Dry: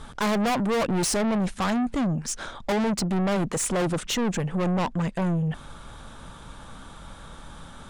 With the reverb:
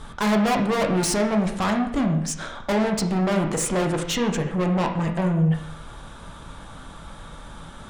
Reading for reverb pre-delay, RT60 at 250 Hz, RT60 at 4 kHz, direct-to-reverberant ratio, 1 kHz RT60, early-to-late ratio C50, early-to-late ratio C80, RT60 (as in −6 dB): 5 ms, 0.75 s, 0.70 s, 2.5 dB, 0.75 s, 7.5 dB, 10.0 dB, 0.75 s